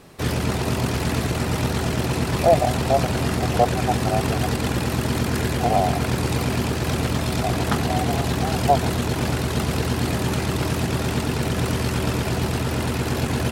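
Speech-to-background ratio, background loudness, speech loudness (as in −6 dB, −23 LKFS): −1.5 dB, −23.5 LKFS, −25.0 LKFS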